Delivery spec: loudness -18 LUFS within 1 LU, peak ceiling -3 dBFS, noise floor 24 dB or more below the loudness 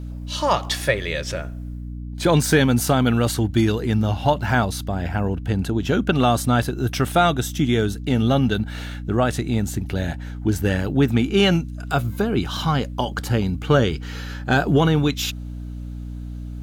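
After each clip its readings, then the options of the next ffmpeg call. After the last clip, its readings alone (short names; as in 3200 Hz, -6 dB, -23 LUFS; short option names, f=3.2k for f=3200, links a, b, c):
hum 60 Hz; harmonics up to 300 Hz; hum level -29 dBFS; loudness -21.0 LUFS; peak -4.5 dBFS; loudness target -18.0 LUFS
-> -af "bandreject=f=60:t=h:w=6,bandreject=f=120:t=h:w=6,bandreject=f=180:t=h:w=6,bandreject=f=240:t=h:w=6,bandreject=f=300:t=h:w=6"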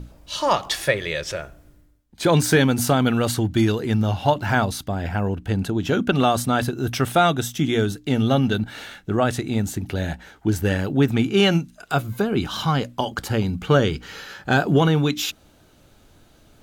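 hum none; loudness -21.5 LUFS; peak -4.5 dBFS; loudness target -18.0 LUFS
-> -af "volume=3.5dB,alimiter=limit=-3dB:level=0:latency=1"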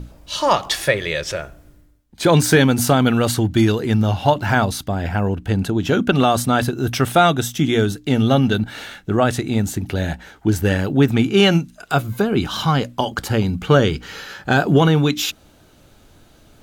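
loudness -18.5 LUFS; peak -3.0 dBFS; noise floor -51 dBFS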